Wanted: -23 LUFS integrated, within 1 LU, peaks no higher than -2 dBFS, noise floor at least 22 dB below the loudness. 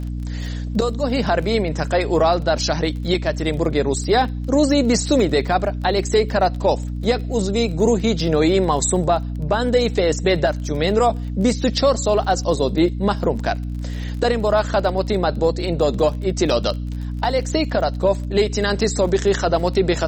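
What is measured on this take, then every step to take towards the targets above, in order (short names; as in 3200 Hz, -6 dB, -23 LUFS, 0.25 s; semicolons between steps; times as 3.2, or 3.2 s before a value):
ticks 28/s; hum 60 Hz; harmonics up to 300 Hz; hum level -23 dBFS; loudness -19.5 LUFS; peak -5.0 dBFS; loudness target -23.0 LUFS
-> de-click; notches 60/120/180/240/300 Hz; gain -3.5 dB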